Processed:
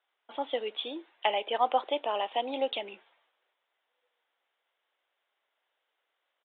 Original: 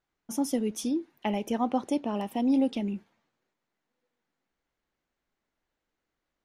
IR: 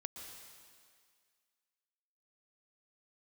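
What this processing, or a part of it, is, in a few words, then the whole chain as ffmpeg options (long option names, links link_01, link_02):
musical greeting card: -af "aresample=8000,aresample=44100,highpass=frequency=510:width=0.5412,highpass=frequency=510:width=1.3066,equalizer=frequency=3300:width_type=o:width=0.56:gain=6.5,volume=5dB"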